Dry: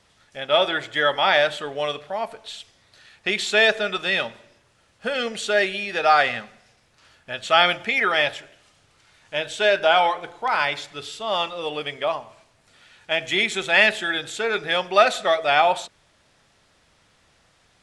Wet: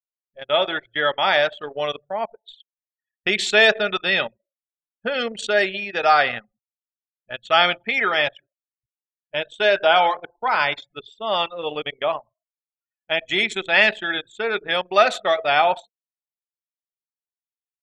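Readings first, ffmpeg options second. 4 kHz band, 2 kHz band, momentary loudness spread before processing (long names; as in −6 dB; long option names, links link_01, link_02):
+0.5 dB, +1.0 dB, 14 LU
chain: -af "afftfilt=real='re*gte(hypot(re,im),0.0112)':imag='im*gte(hypot(re,im),0.0112)':win_size=1024:overlap=0.75,dynaudnorm=framelen=420:gausssize=9:maxgain=8dB,anlmdn=158,volume=-1dB"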